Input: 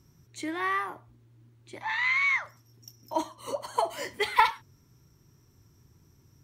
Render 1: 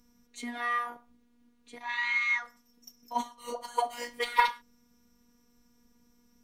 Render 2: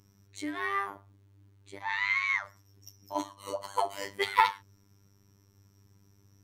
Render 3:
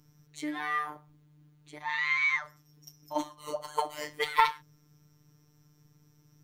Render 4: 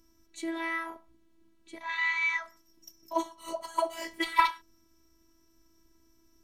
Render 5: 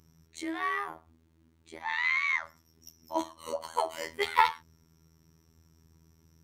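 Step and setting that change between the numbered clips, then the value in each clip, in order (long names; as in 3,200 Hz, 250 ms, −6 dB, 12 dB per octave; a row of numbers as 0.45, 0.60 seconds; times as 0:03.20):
phases set to zero, frequency: 240, 99, 150, 330, 81 Hertz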